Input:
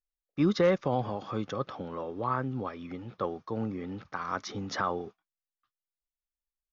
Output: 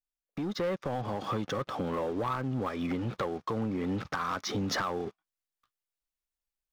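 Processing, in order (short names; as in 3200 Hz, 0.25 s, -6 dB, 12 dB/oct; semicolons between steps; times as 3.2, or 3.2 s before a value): compressor 5:1, threshold -47 dBFS, peak gain reduction 23 dB; sample leveller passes 3; AGC gain up to 7 dB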